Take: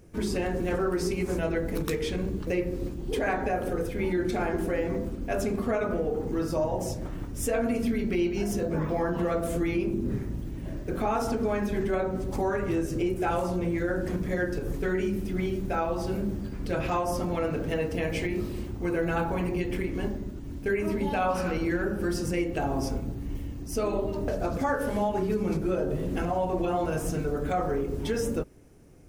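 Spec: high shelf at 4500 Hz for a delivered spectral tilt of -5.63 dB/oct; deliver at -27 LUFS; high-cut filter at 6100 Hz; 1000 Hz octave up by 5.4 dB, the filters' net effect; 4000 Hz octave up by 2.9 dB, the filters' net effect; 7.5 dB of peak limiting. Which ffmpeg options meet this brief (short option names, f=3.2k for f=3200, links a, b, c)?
-af "lowpass=6.1k,equalizer=f=1k:t=o:g=7.5,equalizer=f=4k:t=o:g=7,highshelf=f=4.5k:g=-4.5,volume=2dB,alimiter=limit=-17dB:level=0:latency=1"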